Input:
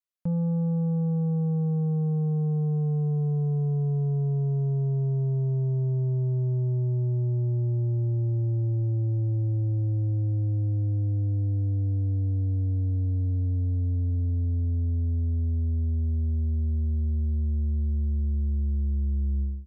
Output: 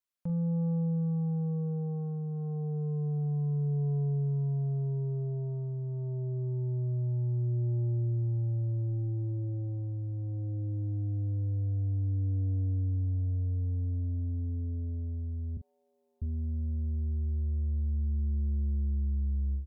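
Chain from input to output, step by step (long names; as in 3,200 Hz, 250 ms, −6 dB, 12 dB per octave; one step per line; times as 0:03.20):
0:15.57–0:16.22: high-pass filter 840 Hz 24 dB per octave
brickwall limiter −29.5 dBFS, peak gain reduction 6 dB
double-tracking delay 42 ms −10 dB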